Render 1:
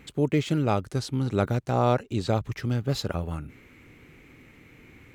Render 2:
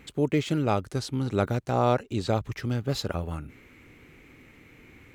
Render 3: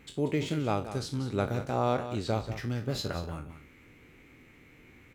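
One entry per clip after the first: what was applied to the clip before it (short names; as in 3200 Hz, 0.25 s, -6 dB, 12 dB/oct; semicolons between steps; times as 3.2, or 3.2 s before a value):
bell 140 Hz -2.5 dB 1.2 oct
spectral trails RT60 0.30 s; echo 0.185 s -11.5 dB; gain -5 dB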